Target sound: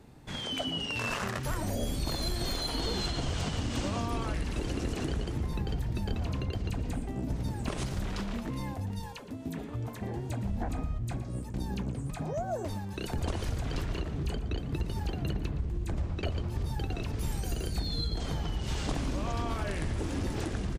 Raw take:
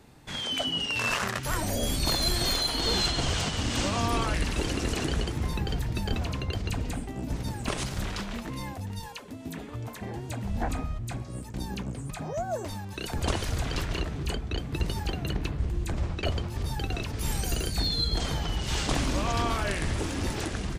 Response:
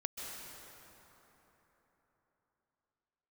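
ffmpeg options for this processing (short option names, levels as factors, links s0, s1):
-filter_complex "[0:a]tiltshelf=f=840:g=3.5,acompressor=threshold=0.0501:ratio=6,asplit=2[s0][s1];[s1]adelay=116.6,volume=0.2,highshelf=f=4000:g=-2.62[s2];[s0][s2]amix=inputs=2:normalize=0,volume=0.794"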